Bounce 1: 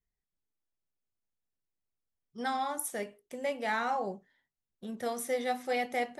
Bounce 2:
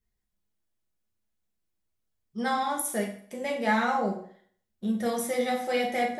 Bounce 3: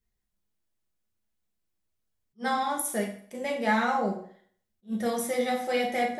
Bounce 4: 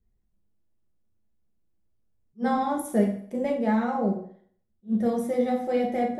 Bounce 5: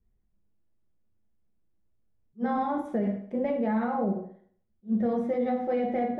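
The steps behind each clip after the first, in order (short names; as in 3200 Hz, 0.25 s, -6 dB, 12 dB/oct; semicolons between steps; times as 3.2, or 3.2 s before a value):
low shelf 260 Hz +5 dB; reverb RT60 0.55 s, pre-delay 5 ms, DRR 0 dB; gain +2 dB
attack slew limiter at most 400 dB/s
tilt shelf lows +10 dB, about 890 Hz; vocal rider 0.5 s; gain -1 dB
LPF 2500 Hz 12 dB/oct; limiter -19.5 dBFS, peak gain reduction 9 dB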